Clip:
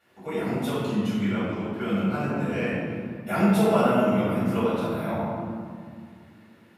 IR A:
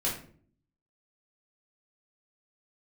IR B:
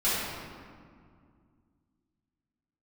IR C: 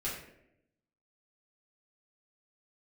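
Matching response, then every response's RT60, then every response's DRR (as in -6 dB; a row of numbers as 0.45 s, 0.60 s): B; 0.50 s, 2.1 s, 0.80 s; -6.5 dB, -13.5 dB, -8.5 dB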